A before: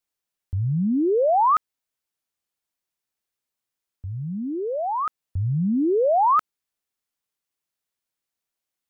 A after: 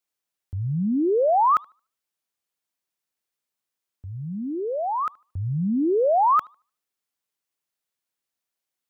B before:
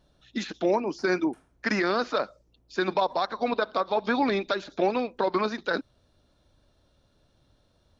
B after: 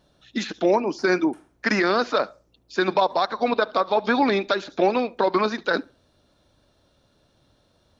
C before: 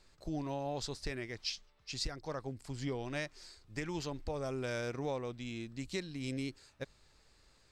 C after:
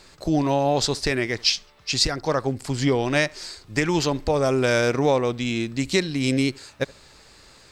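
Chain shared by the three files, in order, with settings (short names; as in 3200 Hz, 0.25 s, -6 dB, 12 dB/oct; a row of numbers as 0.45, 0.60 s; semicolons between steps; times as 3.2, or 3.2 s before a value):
low shelf 71 Hz -11 dB; tape echo 73 ms, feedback 28%, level -23.5 dB, low-pass 2500 Hz; match loudness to -23 LUFS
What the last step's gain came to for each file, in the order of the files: 0.0, +5.0, +18.0 dB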